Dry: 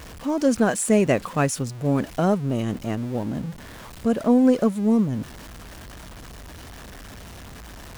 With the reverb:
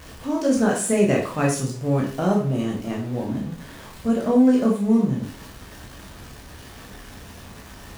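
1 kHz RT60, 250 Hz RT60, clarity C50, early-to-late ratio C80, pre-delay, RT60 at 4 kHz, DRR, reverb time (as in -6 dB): 0.40 s, 0.45 s, 6.5 dB, 11.0 dB, 13 ms, 0.40 s, -2.0 dB, 0.40 s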